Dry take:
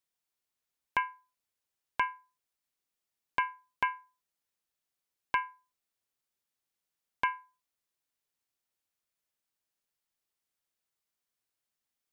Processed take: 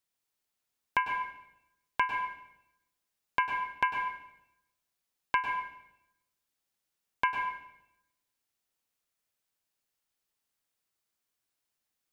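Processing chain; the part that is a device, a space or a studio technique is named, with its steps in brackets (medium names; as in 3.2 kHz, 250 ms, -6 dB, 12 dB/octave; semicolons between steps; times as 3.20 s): bathroom (reverberation RT60 0.85 s, pre-delay 96 ms, DRR 4 dB); trim +1.5 dB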